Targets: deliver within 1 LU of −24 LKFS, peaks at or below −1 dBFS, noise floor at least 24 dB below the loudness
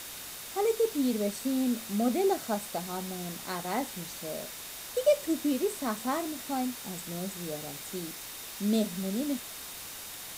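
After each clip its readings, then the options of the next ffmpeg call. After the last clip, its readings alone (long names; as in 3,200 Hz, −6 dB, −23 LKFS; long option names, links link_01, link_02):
interfering tone 3,700 Hz; level of the tone −54 dBFS; background noise floor −43 dBFS; target noise floor −56 dBFS; integrated loudness −32.0 LKFS; sample peak −14.0 dBFS; target loudness −24.0 LKFS
→ -af "bandreject=frequency=3700:width=30"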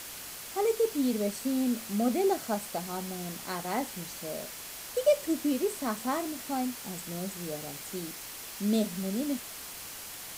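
interfering tone none found; background noise floor −43 dBFS; target noise floor −56 dBFS
→ -af "afftdn=noise_reduction=13:noise_floor=-43"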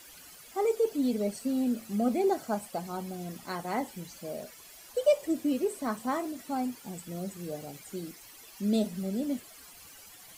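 background noise floor −52 dBFS; target noise floor −56 dBFS
→ -af "afftdn=noise_reduction=6:noise_floor=-52"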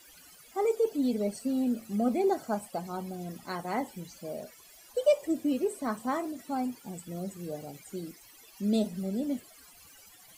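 background noise floor −55 dBFS; target noise floor −56 dBFS
→ -af "afftdn=noise_reduction=6:noise_floor=-55"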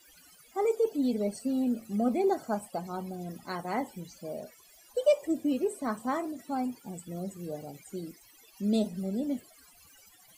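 background noise floor −58 dBFS; integrated loudness −32.0 LKFS; sample peak −14.0 dBFS; target loudness −24.0 LKFS
→ -af "volume=8dB"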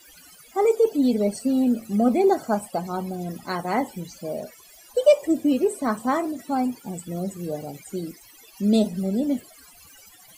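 integrated loudness −24.0 LKFS; sample peak −6.0 dBFS; background noise floor −50 dBFS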